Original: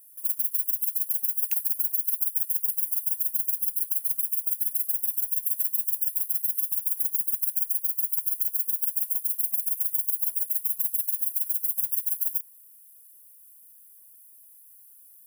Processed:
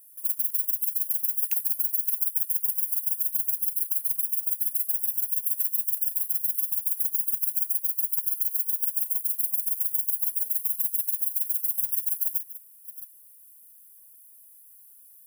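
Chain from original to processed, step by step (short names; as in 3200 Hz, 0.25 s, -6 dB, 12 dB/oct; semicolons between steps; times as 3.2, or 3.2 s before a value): reverse delay 0.451 s, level -14 dB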